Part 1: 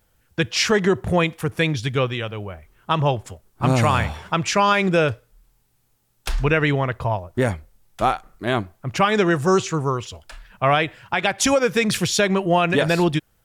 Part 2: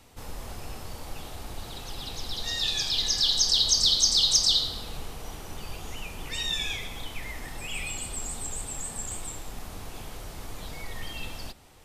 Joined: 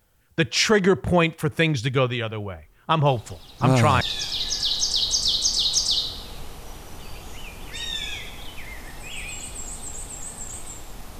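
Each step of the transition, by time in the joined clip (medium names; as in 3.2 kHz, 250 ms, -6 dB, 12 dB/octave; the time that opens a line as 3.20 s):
part 1
3.06 s: add part 2 from 1.64 s 0.95 s -9 dB
4.01 s: go over to part 2 from 2.59 s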